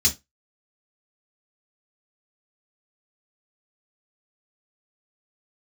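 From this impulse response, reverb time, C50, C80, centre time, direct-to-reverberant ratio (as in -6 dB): 0.20 s, 15.5 dB, 26.5 dB, 11 ms, -1.0 dB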